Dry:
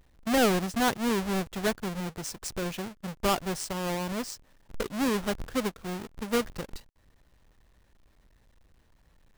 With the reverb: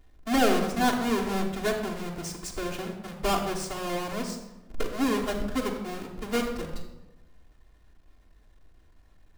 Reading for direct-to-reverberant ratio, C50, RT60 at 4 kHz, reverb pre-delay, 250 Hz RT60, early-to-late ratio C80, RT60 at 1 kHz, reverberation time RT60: -4.0 dB, 6.5 dB, 0.65 s, 3 ms, 1.2 s, 8.5 dB, 0.95 s, 1.0 s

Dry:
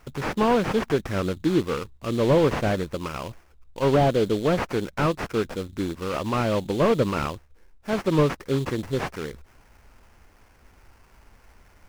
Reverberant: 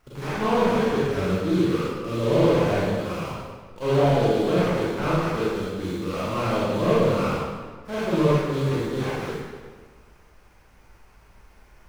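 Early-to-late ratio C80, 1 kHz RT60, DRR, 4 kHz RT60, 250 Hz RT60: -1.0 dB, 1.6 s, -9.5 dB, 1.2 s, 1.6 s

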